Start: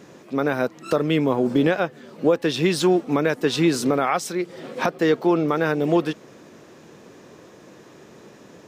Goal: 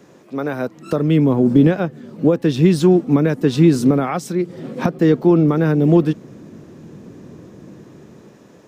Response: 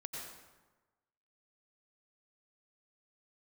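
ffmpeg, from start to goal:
-filter_complex "[0:a]equalizer=f=3.2k:w=0.48:g=-3,acrossover=split=280|1200[a][b][c];[a]dynaudnorm=f=160:g=11:m=15dB[d];[d][b][c]amix=inputs=3:normalize=0,volume=-1dB"

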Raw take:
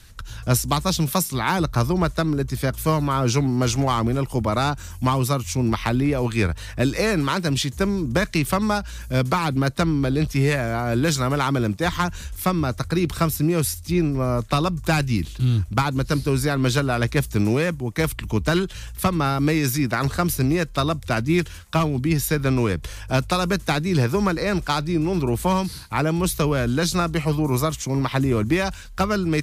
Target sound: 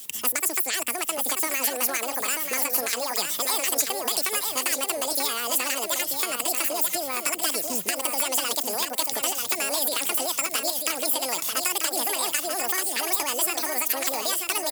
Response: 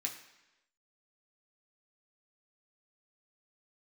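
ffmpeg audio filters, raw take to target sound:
-filter_complex "[0:a]highpass=260,acrossover=split=3400|7800[a][b][c];[a]acompressor=threshold=-32dB:ratio=4[d];[b]acompressor=threshold=-40dB:ratio=4[e];[c]acompressor=threshold=-49dB:ratio=4[f];[d][e][f]amix=inputs=3:normalize=0,crystalizer=i=5.5:c=0,asetrate=88200,aresample=44100,asplit=2[g][h];[h]aecho=0:1:938|1876|2814:0.531|0.133|0.0332[i];[g][i]amix=inputs=2:normalize=0,volume=1dB"

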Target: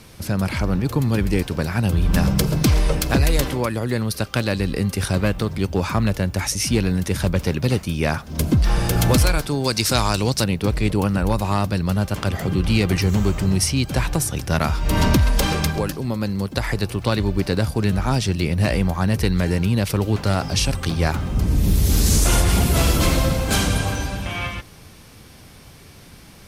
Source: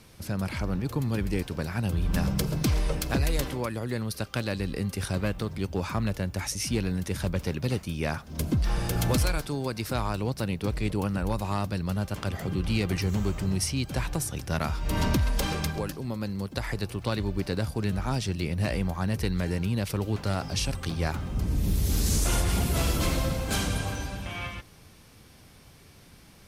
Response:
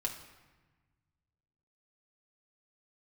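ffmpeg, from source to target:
-filter_complex "[0:a]asettb=1/sr,asplit=3[a][b][c];[a]atrim=end=9.654[d];[b]atrim=start=9.65:end=10.44,asetpts=PTS-STARTPTS,afade=t=in:d=0.004:c=qsin,afade=t=out:st=0.786:d=0.004:c=qsin,equalizer=f=6.3k:t=o:w=2:g=12.5[e];[c]atrim=start=10.436[f];[d][e]acrossfade=d=0.004:c1=hsin:c2=qsin[g];[g][f]acrossfade=d=0.004:c1=qsin:c2=hsin,volume=8.5dB"

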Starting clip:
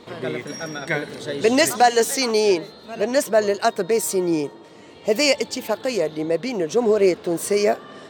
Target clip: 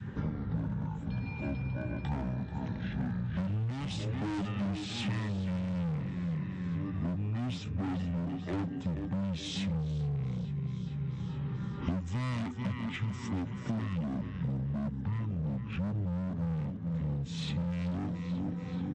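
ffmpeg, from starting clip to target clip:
-filter_complex "[0:a]equalizer=f=270:w=0.6:g=11.5,bandreject=f=1.6k:w=5.6,asplit=2[a][b];[b]aecho=0:1:186|372|558|744|930:0.282|0.132|0.0623|0.0293|0.0138[c];[a][c]amix=inputs=2:normalize=0,adynamicequalizer=threshold=0.0398:dfrequency=1200:dqfactor=1.4:tfrequency=1200:tqfactor=1.4:attack=5:release=100:ratio=0.375:range=2:mode=boostabove:tftype=bell,acrossover=split=290[d][e];[e]asoftclip=type=hard:threshold=-18dB[f];[d][f]amix=inputs=2:normalize=0,acompressor=threshold=-29dB:ratio=16,asetrate=18846,aresample=44100,volume=-2dB"

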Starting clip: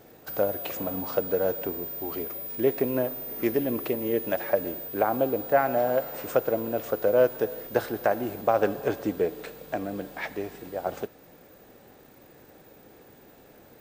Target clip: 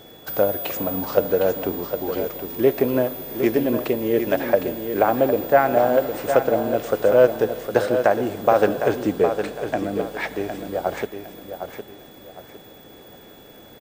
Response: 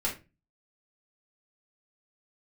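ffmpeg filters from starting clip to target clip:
-af "aeval=exprs='val(0)+0.00178*sin(2*PI*3400*n/s)':c=same,aecho=1:1:759|1518|2277|3036:0.398|0.123|0.0383|0.0119,volume=6dB"

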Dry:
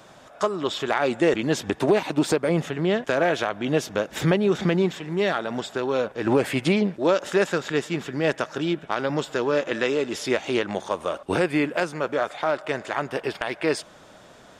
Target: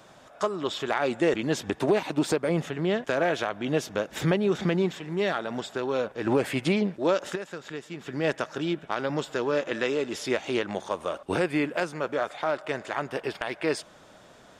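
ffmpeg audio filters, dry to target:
-filter_complex "[0:a]asettb=1/sr,asplit=3[a][b][c];[a]atrim=end=7.354[d];[b]atrim=start=7.35:end=8.07,asetpts=PTS-STARTPTS,afade=t=in:d=0.004:c=qsin,afade=t=out:st=0.716:d=0.004:c=qsin,acompressor=threshold=-33dB:ratio=3[e];[c]atrim=start=8.066[f];[d][e]acrossfade=d=0.004:c1=hsin:c2=qsin[g];[g][f]acrossfade=d=0.004:c1=qsin:c2=hsin,volume=-3.5dB"

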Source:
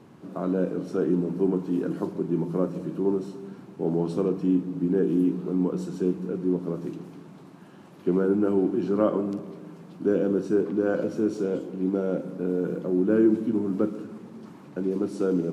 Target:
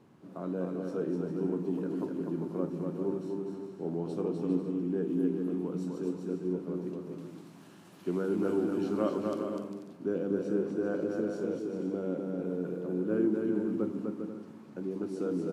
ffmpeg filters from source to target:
-filter_complex "[0:a]asettb=1/sr,asplit=3[a][b][c];[a]atrim=end=7.184[d];[b]atrim=start=7.18:end=9.43,asetpts=PTS-STARTPTS,afade=t=in:d=0.004:c=qsin,afade=t=out:st=2.246:d=0.004:c=qsin,highshelf=f=2.3k:g=11.5[e];[c]atrim=start=9.426[f];[d][e]acrossfade=d=0.004:c1=hsin:c2=qsin[g];[g][f]acrossfade=d=0.004:c1=qsin:c2=hsin,aecho=1:1:250|400|490|544|576.4:0.631|0.398|0.251|0.158|0.1,volume=-9dB"

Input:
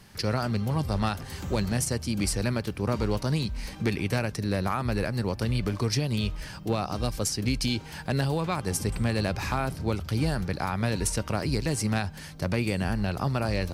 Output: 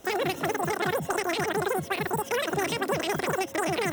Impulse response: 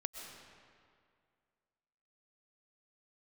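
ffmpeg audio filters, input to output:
-filter_complex "[0:a]bandreject=f=1.3k:w=5.1,acrossover=split=1700[a][b];[b]asoftclip=type=tanh:threshold=-31.5dB[c];[a][c]amix=inputs=2:normalize=0,asetrate=154350,aresample=44100"

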